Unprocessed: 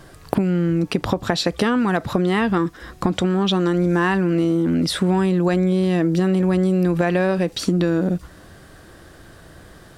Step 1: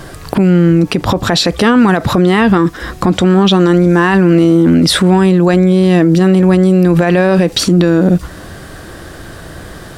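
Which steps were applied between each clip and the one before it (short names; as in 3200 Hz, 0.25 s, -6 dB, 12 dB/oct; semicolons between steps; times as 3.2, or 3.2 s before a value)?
maximiser +15 dB; gain -1 dB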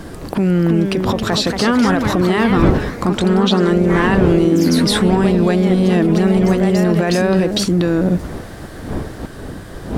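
wind noise 310 Hz -21 dBFS; echoes that change speed 0.371 s, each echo +2 st, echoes 3, each echo -6 dB; gain -6 dB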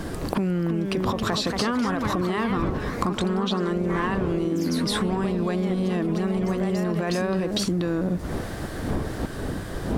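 dynamic EQ 1100 Hz, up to +7 dB, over -40 dBFS, Q 5.5; compressor 12:1, threshold -21 dBFS, peak gain reduction 15 dB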